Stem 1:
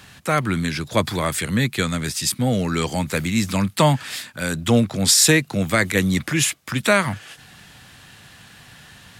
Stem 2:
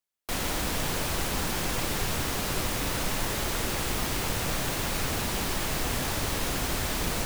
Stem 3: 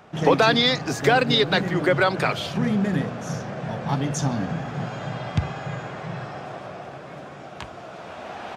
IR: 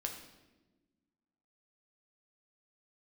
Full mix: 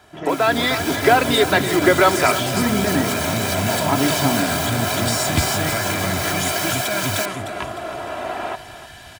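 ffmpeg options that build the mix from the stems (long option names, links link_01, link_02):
-filter_complex "[0:a]acrossover=split=150[link_01][link_02];[link_02]acompressor=threshold=-22dB:ratio=6[link_03];[link_01][link_03]amix=inputs=2:normalize=0,volume=-12.5dB,asplit=2[link_04][link_05];[link_05]volume=-3.5dB[link_06];[1:a]highpass=frequency=940:width=0.5412,highpass=frequency=940:width=1.3066,volume=-6.5dB[link_07];[2:a]bass=frequency=250:gain=-5,treble=frequency=4000:gain=-14,volume=-3.5dB,asplit=2[link_08][link_09];[link_09]volume=-14dB[link_10];[link_04][link_07]amix=inputs=2:normalize=0,aecho=1:1:1.3:0.88,alimiter=level_in=1.5dB:limit=-24dB:level=0:latency=1,volume=-1.5dB,volume=0dB[link_11];[link_06][link_10]amix=inputs=2:normalize=0,aecho=0:1:304|608|912|1216|1520|1824:1|0.43|0.185|0.0795|0.0342|0.0147[link_12];[link_08][link_11][link_12]amix=inputs=3:normalize=0,aecho=1:1:3:0.52,dynaudnorm=framelen=380:gausssize=3:maxgain=11.5dB"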